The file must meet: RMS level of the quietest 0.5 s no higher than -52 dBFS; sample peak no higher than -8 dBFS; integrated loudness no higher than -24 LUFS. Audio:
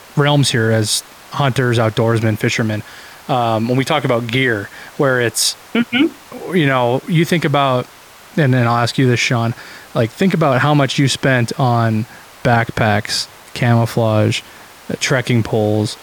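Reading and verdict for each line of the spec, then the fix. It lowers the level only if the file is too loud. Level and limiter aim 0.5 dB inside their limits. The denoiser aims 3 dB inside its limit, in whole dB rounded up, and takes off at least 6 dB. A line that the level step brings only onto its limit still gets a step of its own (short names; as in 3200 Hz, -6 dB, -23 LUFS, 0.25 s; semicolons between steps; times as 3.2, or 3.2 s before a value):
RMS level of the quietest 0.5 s -41 dBFS: fail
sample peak -3.5 dBFS: fail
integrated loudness -16.0 LUFS: fail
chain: denoiser 6 dB, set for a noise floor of -41 dBFS; gain -8.5 dB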